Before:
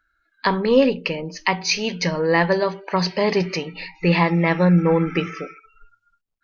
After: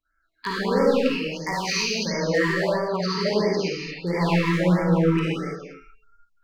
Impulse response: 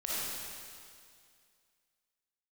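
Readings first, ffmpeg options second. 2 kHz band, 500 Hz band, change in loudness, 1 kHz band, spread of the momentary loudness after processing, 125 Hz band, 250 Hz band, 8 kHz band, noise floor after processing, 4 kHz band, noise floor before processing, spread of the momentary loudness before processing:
-3.5 dB, -2.5 dB, -3.0 dB, -4.5 dB, 9 LU, -2.5 dB, -2.5 dB, n/a, -70 dBFS, -1.5 dB, -70 dBFS, 10 LU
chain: -filter_complex "[0:a]aeval=exprs='0.335*(abs(mod(val(0)/0.335+3,4)-2)-1)':c=same[a];[1:a]atrim=start_sample=2205,afade=t=out:st=0.41:d=0.01,atrim=end_sample=18522[b];[a][b]afir=irnorm=-1:irlink=0,afftfilt=real='re*(1-between(b*sr/1024,620*pow(3300/620,0.5+0.5*sin(2*PI*1.5*pts/sr))/1.41,620*pow(3300/620,0.5+0.5*sin(2*PI*1.5*pts/sr))*1.41))':imag='im*(1-between(b*sr/1024,620*pow(3300/620,0.5+0.5*sin(2*PI*1.5*pts/sr))/1.41,620*pow(3300/620,0.5+0.5*sin(2*PI*1.5*pts/sr))*1.41))':win_size=1024:overlap=0.75,volume=-6.5dB"

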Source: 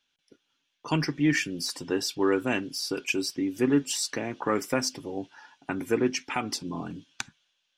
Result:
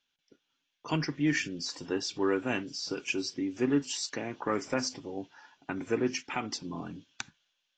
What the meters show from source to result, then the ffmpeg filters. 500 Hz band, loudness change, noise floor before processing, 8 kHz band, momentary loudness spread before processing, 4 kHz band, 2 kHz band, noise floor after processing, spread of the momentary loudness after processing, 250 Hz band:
-4.0 dB, -4.0 dB, -77 dBFS, -5.5 dB, 14 LU, -4.0 dB, -4.0 dB, -81 dBFS, 14 LU, -4.0 dB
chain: -af "volume=-4dB" -ar 16000 -c:a aac -b:a 32k

